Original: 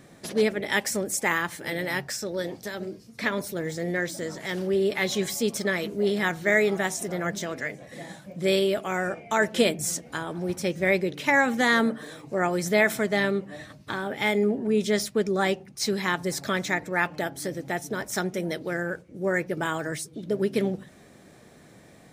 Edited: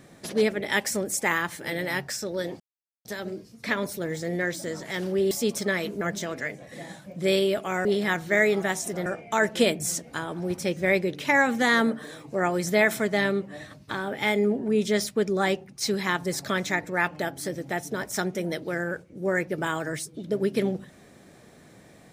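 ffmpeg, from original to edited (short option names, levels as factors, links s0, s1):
-filter_complex "[0:a]asplit=6[s0][s1][s2][s3][s4][s5];[s0]atrim=end=2.6,asetpts=PTS-STARTPTS,afade=t=out:st=2.596:d=0.004:c=hsin,apad=pad_dur=0.45[s6];[s1]atrim=start=2.6:end=4.862,asetpts=PTS-STARTPTS,afade=t=in:d=0.004:c=hsin[s7];[s2]atrim=start=5.298:end=6.002[s8];[s3]atrim=start=7.208:end=9.052[s9];[s4]atrim=start=5.998:end=7.212[s10];[s5]atrim=start=9.048[s11];[s6][s7]concat=n=2:v=0:a=1[s12];[s12][s8]acrossfade=d=0.004:c1=hsin:c2=hsin[s13];[s13][s9]acrossfade=d=0.004:c1=hsin:c2=hsin[s14];[s14][s10]acrossfade=d=0.004:c1=hsin:c2=hsin[s15];[s15][s11]acrossfade=d=0.004:c1=hsin:c2=hsin"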